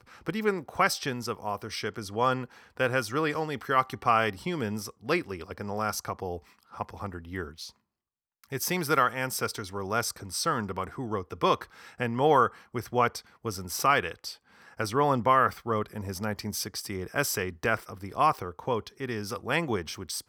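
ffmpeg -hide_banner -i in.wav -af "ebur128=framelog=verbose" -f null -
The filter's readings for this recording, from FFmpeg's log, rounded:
Integrated loudness:
  I:         -29.1 LUFS
  Threshold: -39.5 LUFS
Loudness range:
  LRA:         6.2 LU
  Threshold: -49.5 LUFS
  LRA low:   -33.8 LUFS
  LRA high:  -27.6 LUFS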